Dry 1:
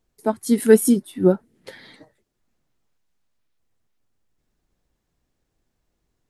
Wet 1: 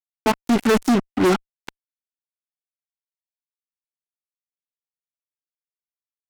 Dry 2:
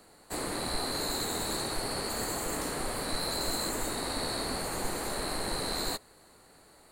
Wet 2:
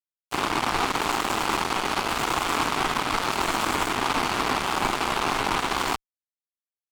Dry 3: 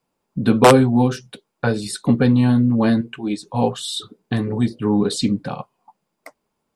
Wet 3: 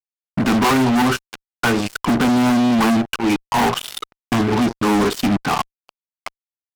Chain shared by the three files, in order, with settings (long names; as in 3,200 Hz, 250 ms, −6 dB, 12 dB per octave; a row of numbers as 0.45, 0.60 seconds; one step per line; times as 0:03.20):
three-way crossover with the lows and the highs turned down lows −16 dB, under 300 Hz, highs −18 dB, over 2,900 Hz
phaser with its sweep stopped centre 2,700 Hz, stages 8
fuzz pedal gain 40 dB, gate −41 dBFS
normalise the peak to −12 dBFS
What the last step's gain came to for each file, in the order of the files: −0.5, −0.5, −0.5 decibels